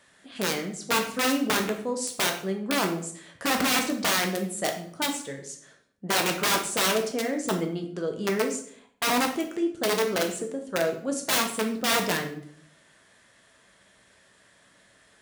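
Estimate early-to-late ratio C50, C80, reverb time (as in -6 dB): 8.5 dB, 12.5 dB, 0.60 s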